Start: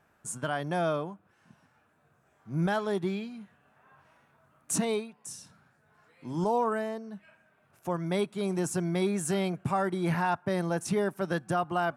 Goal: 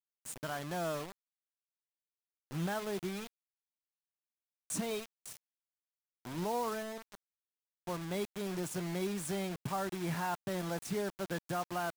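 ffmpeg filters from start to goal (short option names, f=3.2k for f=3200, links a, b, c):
-filter_complex "[0:a]asplit=3[a][b][c];[a]afade=t=out:st=4.9:d=0.02[d];[b]aecho=1:1:1.6:0.74,afade=t=in:st=4.9:d=0.02,afade=t=out:st=5.37:d=0.02[e];[c]afade=t=in:st=5.37:d=0.02[f];[d][e][f]amix=inputs=3:normalize=0,acrusher=bits=5:mix=0:aa=0.000001,volume=-8dB"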